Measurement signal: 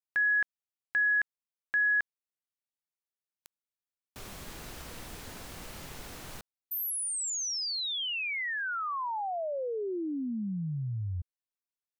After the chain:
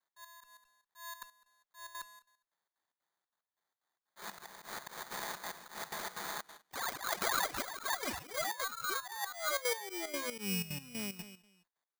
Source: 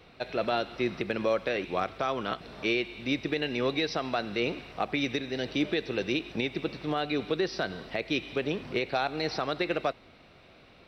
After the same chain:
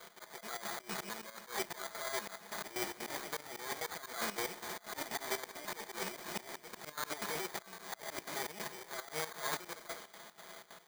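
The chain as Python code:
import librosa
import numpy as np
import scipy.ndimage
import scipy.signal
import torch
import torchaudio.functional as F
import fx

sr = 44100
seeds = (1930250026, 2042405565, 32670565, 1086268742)

p1 = fx.lower_of_two(x, sr, delay_ms=5.8)
p2 = fx.peak_eq(p1, sr, hz=4200.0, db=-7.5, octaves=1.2)
p3 = p2 + 0.81 * np.pad(p2, (int(4.7 * sr / 1000.0), 0))[:len(p2)]
p4 = fx.sample_hold(p3, sr, seeds[0], rate_hz=2700.0, jitter_pct=0)
p5 = fx.highpass(p4, sr, hz=1500.0, slope=6)
p6 = fx.over_compress(p5, sr, threshold_db=-42.0, ratio=-1.0)
p7 = p6 + fx.echo_feedback(p6, sr, ms=204, feedback_pct=17, wet_db=-13.0, dry=0)
p8 = fx.dynamic_eq(p7, sr, hz=3100.0, q=4.0, threshold_db=-60.0, ratio=8.0, max_db=-5)
p9 = fx.step_gate(p8, sr, bpm=185, pattern='x.x..xx.xx.xx', floor_db=-12.0, edge_ms=4.5)
p10 = fx.auto_swell(p9, sr, attack_ms=142.0)
y = F.gain(torch.from_numpy(p10), 6.5).numpy()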